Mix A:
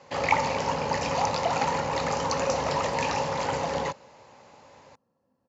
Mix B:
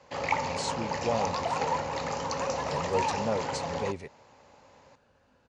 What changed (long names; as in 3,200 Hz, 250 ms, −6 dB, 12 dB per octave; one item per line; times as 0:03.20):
speech: unmuted
first sound −5.0 dB
second sound +4.5 dB